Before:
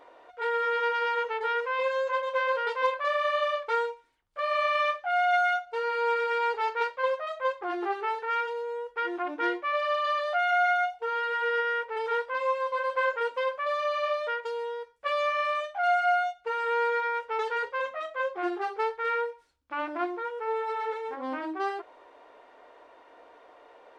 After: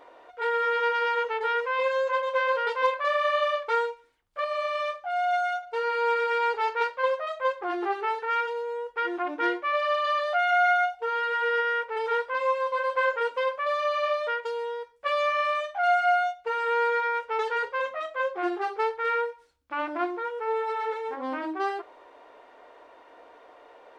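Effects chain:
0:04.44–0:05.63: parametric band 1,800 Hz −8.5 dB 2.1 octaves
on a send: convolution reverb RT60 0.40 s, pre-delay 43 ms, DRR 23 dB
on the sum: level +2 dB

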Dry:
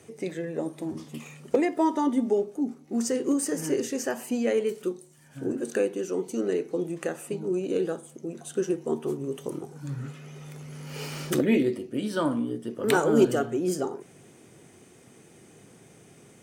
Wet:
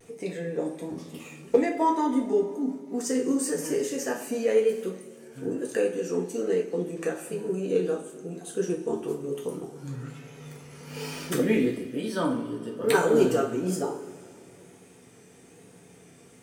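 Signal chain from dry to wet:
pitch vibrato 1.1 Hz 54 cents
coupled-rooms reverb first 0.33 s, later 2.4 s, from −18 dB, DRR −1 dB
level −3 dB

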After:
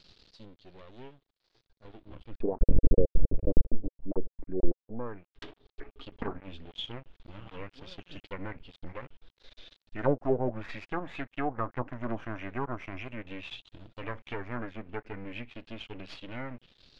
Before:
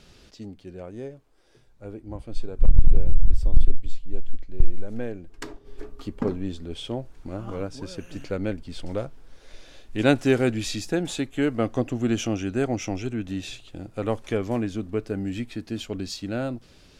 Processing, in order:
loose part that buzzes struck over −24 dBFS, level −23 dBFS
0:02.38–0:04.82: parametric band 270 Hz +14.5 dB 2.2 octaves
half-wave rectification
envelope-controlled low-pass 520–4,500 Hz down, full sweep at −18.5 dBFS
level −6.5 dB

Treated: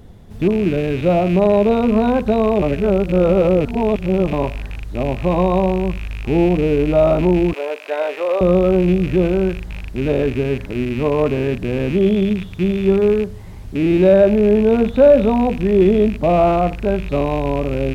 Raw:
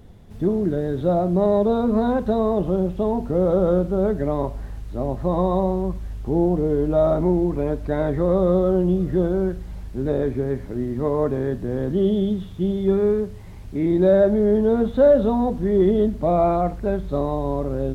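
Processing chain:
loose part that buzzes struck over −29 dBFS, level −26 dBFS
0:02.62–0:04.33: reverse
0:07.53–0:08.41: high-pass filter 480 Hz 24 dB per octave
level +4.5 dB

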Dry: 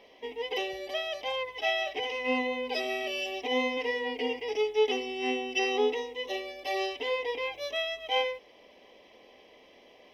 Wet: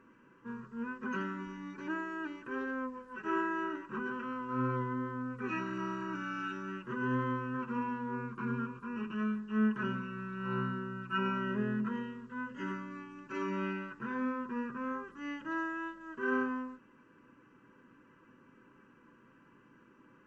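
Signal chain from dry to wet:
mains-hum notches 60/120/180/240/300/360/420 Hz
wrong playback speed 15 ips tape played at 7.5 ips
level −5 dB

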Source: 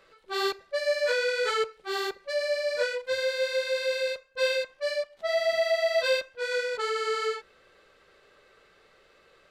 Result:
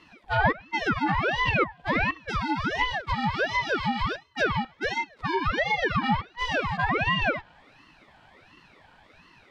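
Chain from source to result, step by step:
hollow resonant body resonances 240/1,200/2,800 Hz, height 16 dB, ringing for 20 ms
treble cut that deepens with the level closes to 1,600 Hz, closed at −17 dBFS
ring modulator whose carrier an LFO sweeps 890 Hz, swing 70%, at 1.4 Hz

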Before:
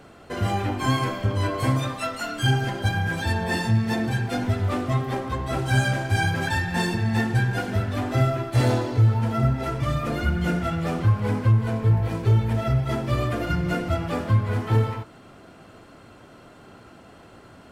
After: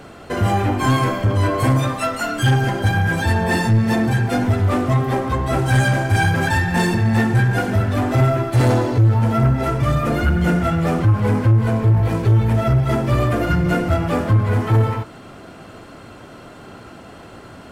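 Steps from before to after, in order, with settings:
dynamic equaliser 3,900 Hz, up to −5 dB, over −45 dBFS, Q 0.94
soft clipping −17.5 dBFS, distortion −14 dB
level +8.5 dB

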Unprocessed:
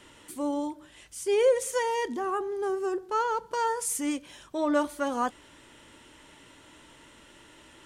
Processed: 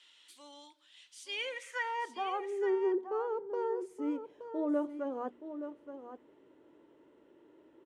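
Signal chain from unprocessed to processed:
band-pass filter sweep 3,700 Hz → 390 Hz, 0:01.26–0:02.73
on a send: single-tap delay 873 ms −10 dB
on the sum: dynamic equaliser 2,500 Hz, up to +4 dB, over −55 dBFS, Q 1.1
mains-hum notches 60/120/180/240 Hz

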